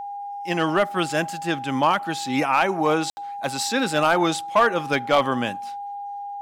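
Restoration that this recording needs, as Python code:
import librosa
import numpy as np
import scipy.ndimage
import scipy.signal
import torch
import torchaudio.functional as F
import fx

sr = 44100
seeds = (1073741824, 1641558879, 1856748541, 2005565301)

y = fx.fix_declip(x, sr, threshold_db=-10.5)
y = fx.notch(y, sr, hz=810.0, q=30.0)
y = fx.fix_ambience(y, sr, seeds[0], print_start_s=5.82, print_end_s=6.32, start_s=3.1, end_s=3.17)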